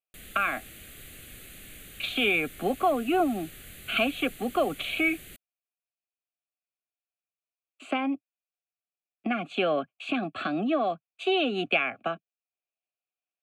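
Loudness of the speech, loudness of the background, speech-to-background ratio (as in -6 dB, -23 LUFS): -28.0 LUFS, -45.5 LUFS, 17.5 dB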